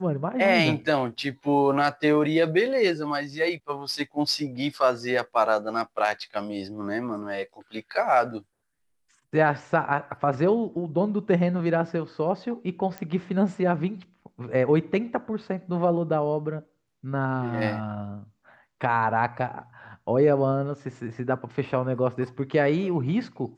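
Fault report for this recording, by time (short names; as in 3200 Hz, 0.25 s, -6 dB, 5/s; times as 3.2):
12.98 pop -19 dBFS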